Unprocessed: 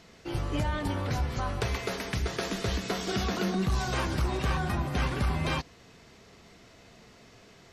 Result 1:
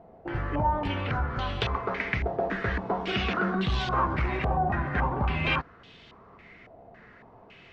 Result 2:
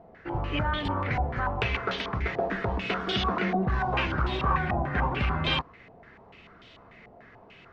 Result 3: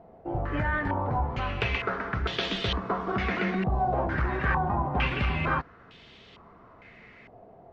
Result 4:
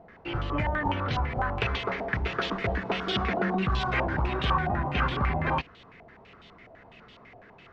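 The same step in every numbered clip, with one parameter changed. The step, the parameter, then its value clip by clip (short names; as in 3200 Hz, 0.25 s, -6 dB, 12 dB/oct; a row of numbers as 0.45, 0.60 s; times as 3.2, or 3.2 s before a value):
stepped low-pass, rate: 3.6, 6.8, 2.2, 12 Hz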